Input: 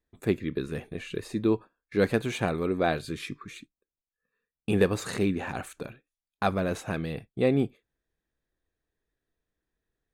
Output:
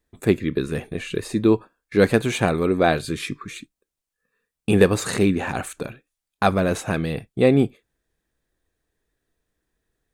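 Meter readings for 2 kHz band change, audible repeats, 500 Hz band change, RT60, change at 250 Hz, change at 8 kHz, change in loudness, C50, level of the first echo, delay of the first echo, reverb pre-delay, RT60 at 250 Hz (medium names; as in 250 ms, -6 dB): +7.5 dB, no echo, +7.5 dB, no reverb, +7.5 dB, +10.0 dB, +7.5 dB, no reverb, no echo, no echo, no reverb, no reverb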